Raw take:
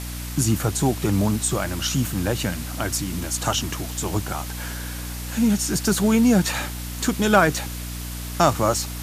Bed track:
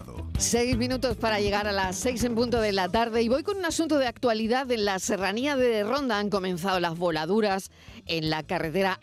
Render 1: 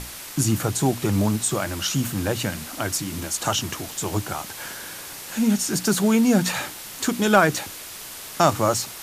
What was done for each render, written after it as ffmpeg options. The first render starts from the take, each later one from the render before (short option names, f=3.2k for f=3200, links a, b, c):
-af "bandreject=f=60:t=h:w=6,bandreject=f=120:t=h:w=6,bandreject=f=180:t=h:w=6,bandreject=f=240:t=h:w=6,bandreject=f=300:t=h:w=6"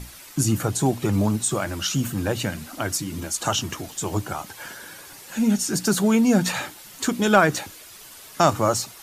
-af "afftdn=nr=9:nf=-38"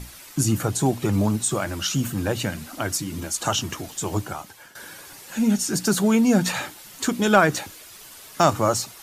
-filter_complex "[0:a]asplit=3[a][b][c];[a]afade=t=out:st=7.65:d=0.02[d];[b]acrusher=bits=7:mode=log:mix=0:aa=0.000001,afade=t=in:st=7.65:d=0.02,afade=t=out:st=8.43:d=0.02[e];[c]afade=t=in:st=8.43:d=0.02[f];[d][e][f]amix=inputs=3:normalize=0,asplit=2[g][h];[g]atrim=end=4.75,asetpts=PTS-STARTPTS,afade=t=out:st=4.18:d=0.57:silence=0.177828[i];[h]atrim=start=4.75,asetpts=PTS-STARTPTS,afade=t=in:d=0.004:c=hsin:silence=0.177828[j];[i][j]concat=n=2:v=0:a=1"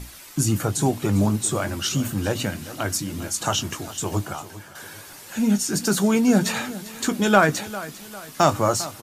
-filter_complex "[0:a]asplit=2[a][b];[b]adelay=20,volume=-12.5dB[c];[a][c]amix=inputs=2:normalize=0,aecho=1:1:400|800|1200|1600:0.158|0.0682|0.0293|0.0126"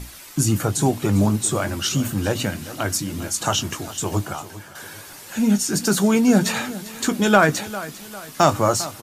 -af "volume=2dB,alimiter=limit=-2dB:level=0:latency=1"